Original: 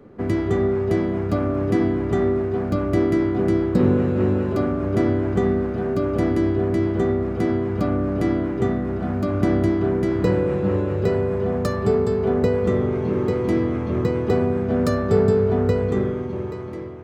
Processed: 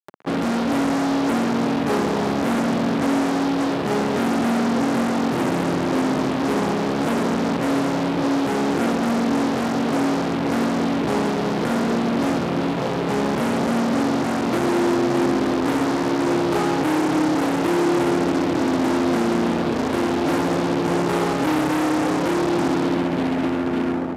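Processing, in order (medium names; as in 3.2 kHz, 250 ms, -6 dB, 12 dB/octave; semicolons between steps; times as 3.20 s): low-pass 2.9 kHz; hum notches 50/100/150/200/250/300/350 Hz; fuzz box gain 35 dB, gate -39 dBFS; wide varispeed 0.705×; upward compressor, threshold -28 dBFS; high-pass 220 Hz 12 dB/octave; filtered feedback delay 219 ms, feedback 84%, low-pass 2.3 kHz, level -13 dB; trim -4 dB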